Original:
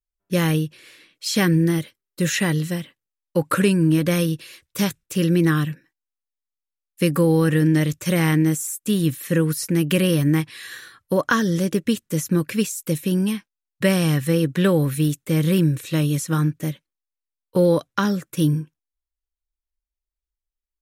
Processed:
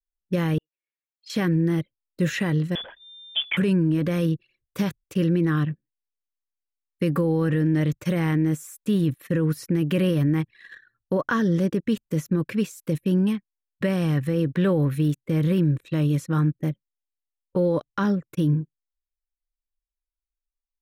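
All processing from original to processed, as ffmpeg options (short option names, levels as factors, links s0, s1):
-filter_complex "[0:a]asettb=1/sr,asplit=3[s0][s1][s2];[s0]atrim=end=0.584[s3];[s1]atrim=start=0.58:end=1.3,asetpts=PTS-STARTPTS,afade=t=in:d=0.004:c=qsin,afade=t=out:st=0.716:d=0.004:c=qsin,acontrast=26,highpass=450,lowpass=2800,aderivative[s4];[s2]atrim=start=1.296[s5];[s3][s4]acrossfade=d=0.004:c1=hsin:c2=qsin[s6];[s6][s5]acrossfade=d=0.004:c1=qsin:c2=hsin,asettb=1/sr,asplit=3[s7][s8][s9];[s7]atrim=end=2.754[s10];[s8]atrim=start=2.75:end=3.57,asetpts=PTS-STARTPTS,afade=t=in:d=0.004:c=qsin,afade=t=out:st=0.816:d=0.004:c=qsin,aeval=exprs='val(0)+0.5*0.0299*sgn(val(0))':c=same,lowpass=f=3100:t=q:w=0.5098,lowpass=f=3100:t=q:w=0.6013,lowpass=f=3100:t=q:w=0.9,lowpass=f=3100:t=q:w=2.563,afreqshift=-3600[s11];[s9]atrim=start=3.566[s12];[s10][s11]acrossfade=d=0.004:c1=hsin:c2=qsin[s13];[s13][s12]acrossfade=d=0.004:c1=qsin:c2=hsin,anlmdn=6.31,equalizer=f=9700:w=0.34:g=-14.5,alimiter=limit=0.188:level=0:latency=1:release=14"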